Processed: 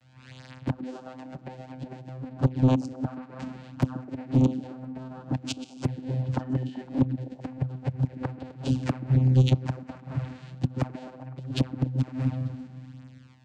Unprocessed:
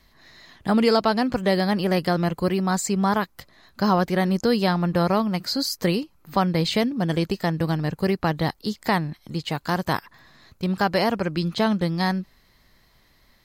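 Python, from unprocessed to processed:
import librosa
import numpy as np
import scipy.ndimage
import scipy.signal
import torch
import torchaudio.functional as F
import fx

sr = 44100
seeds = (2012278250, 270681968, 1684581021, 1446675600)

p1 = fx.high_shelf(x, sr, hz=2900.0, db=3.5)
p2 = fx.room_shoebox(p1, sr, seeds[0], volume_m3=440.0, walls='mixed', distance_m=0.51)
p3 = fx.gate_flip(p2, sr, shuts_db=-12.0, range_db=-25)
p4 = fx.volume_shaper(p3, sr, bpm=90, per_beat=1, depth_db=-22, release_ms=267.0, shape='fast start')
p5 = p3 + F.gain(torch.from_numpy(p4), -0.5).numpy()
p6 = fx.vocoder(p5, sr, bands=8, carrier='saw', carrier_hz=129.0)
p7 = fx.peak_eq(p6, sr, hz=410.0, db=-9.5, octaves=0.22)
p8 = fx.env_flanger(p7, sr, rest_ms=9.4, full_db=-20.0)
p9 = fx.small_body(p8, sr, hz=(300.0, 1800.0, 3000.0), ring_ms=45, db=15, at=(6.4, 6.82))
p10 = p9 + fx.echo_stepped(p9, sr, ms=127, hz=260.0, octaves=0.7, feedback_pct=70, wet_db=-11.5, dry=0)
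p11 = 10.0 ** (-18.0 / 20.0) * np.tanh(p10 / 10.0 ** (-18.0 / 20.0))
y = F.gain(torch.from_numpy(p11), 5.5).numpy()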